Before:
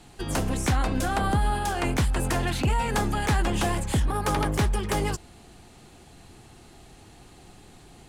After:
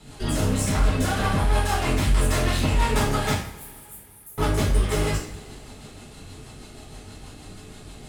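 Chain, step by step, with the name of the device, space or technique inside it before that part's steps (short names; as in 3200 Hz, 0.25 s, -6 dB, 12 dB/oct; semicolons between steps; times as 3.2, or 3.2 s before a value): overdriven rotary cabinet (tube stage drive 31 dB, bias 0.65; rotary speaker horn 6.3 Hz); 3.33–4.38 inverse Chebyshev high-pass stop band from 2400 Hz, stop band 80 dB; two-slope reverb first 0.48 s, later 2.8 s, from -22 dB, DRR -8.5 dB; gain +4 dB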